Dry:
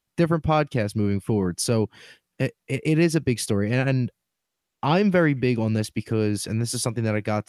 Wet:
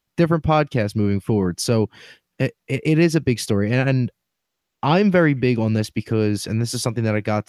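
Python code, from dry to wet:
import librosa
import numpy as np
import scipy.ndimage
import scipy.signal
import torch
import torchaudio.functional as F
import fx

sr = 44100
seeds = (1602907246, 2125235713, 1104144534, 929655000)

y = fx.peak_eq(x, sr, hz=9400.0, db=-6.5, octaves=0.52)
y = F.gain(torch.from_numpy(y), 3.5).numpy()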